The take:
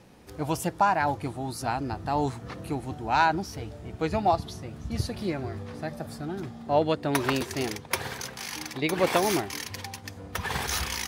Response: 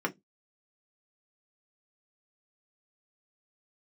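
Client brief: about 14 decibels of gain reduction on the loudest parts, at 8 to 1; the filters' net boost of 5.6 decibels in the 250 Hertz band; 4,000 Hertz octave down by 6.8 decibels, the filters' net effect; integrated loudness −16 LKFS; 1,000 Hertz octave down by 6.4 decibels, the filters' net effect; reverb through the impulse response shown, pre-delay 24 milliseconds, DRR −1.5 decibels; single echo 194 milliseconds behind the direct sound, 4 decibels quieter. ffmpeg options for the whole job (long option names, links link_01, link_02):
-filter_complex "[0:a]equalizer=frequency=250:width_type=o:gain=8,equalizer=frequency=1000:width_type=o:gain=-9,equalizer=frequency=4000:width_type=o:gain=-8.5,acompressor=threshold=-34dB:ratio=8,aecho=1:1:194:0.631,asplit=2[link_01][link_02];[1:a]atrim=start_sample=2205,adelay=24[link_03];[link_02][link_03]afir=irnorm=-1:irlink=0,volume=-6dB[link_04];[link_01][link_04]amix=inputs=2:normalize=0,volume=15.5dB"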